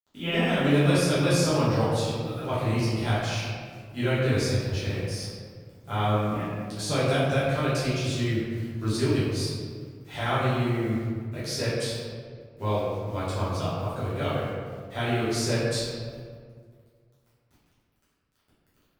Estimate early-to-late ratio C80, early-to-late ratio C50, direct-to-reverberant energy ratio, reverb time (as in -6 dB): 0.5 dB, -2.0 dB, -12.0 dB, 1.9 s